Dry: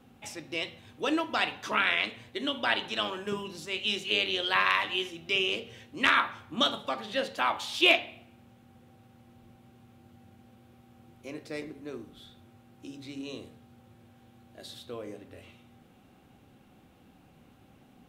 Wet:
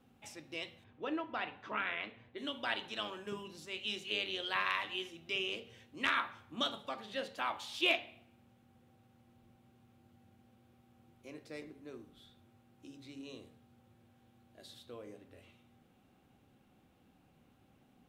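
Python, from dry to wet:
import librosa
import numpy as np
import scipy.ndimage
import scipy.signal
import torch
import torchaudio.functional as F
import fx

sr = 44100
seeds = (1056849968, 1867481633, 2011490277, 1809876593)

y = fx.lowpass(x, sr, hz=2300.0, slope=12, at=(0.83, 2.37), fade=0.02)
y = y * 10.0 ** (-9.0 / 20.0)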